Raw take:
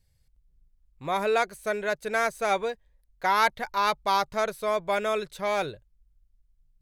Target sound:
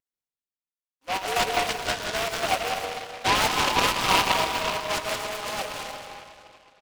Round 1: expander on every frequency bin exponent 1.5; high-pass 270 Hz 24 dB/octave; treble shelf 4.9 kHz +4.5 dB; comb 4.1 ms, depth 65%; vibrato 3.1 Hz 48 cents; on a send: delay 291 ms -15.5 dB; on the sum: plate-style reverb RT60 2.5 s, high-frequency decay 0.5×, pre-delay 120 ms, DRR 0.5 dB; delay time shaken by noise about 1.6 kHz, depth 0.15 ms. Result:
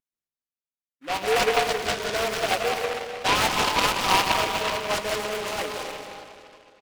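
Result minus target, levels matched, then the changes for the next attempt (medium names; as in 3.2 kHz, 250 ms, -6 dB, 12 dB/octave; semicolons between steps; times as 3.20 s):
500 Hz band +3.0 dB
change: high-pass 590 Hz 24 dB/octave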